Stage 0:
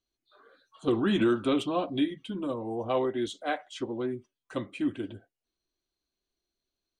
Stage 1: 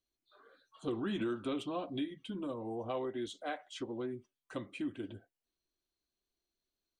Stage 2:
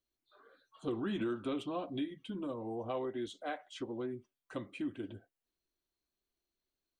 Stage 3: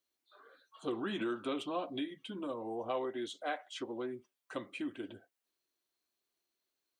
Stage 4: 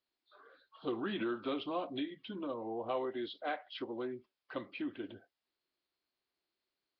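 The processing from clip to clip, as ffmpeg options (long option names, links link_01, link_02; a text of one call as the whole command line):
ffmpeg -i in.wav -af "acompressor=threshold=-34dB:ratio=2,volume=-4dB" out.wav
ffmpeg -i in.wav -af "equalizer=frequency=7500:width=0.43:gain=-3.5" out.wav
ffmpeg -i in.wav -af "highpass=frequency=460:poles=1,volume=4dB" out.wav
ffmpeg -i in.wav -ar 11025 -c:a nellymoser out.flv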